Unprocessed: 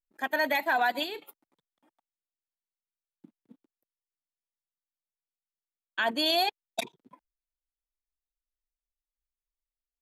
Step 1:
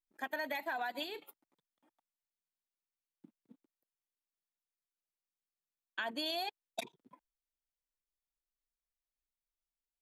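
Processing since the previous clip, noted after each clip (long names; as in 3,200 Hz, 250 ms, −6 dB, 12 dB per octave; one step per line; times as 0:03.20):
downward compressor, threshold −29 dBFS, peak gain reduction 7.5 dB
level −5.5 dB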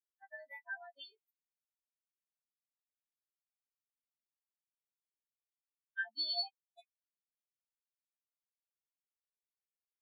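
every partial snapped to a pitch grid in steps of 2 semitones
every bin expanded away from the loudest bin 4 to 1
level −4 dB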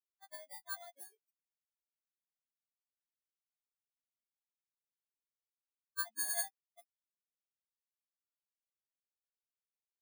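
samples in bit-reversed order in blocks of 16 samples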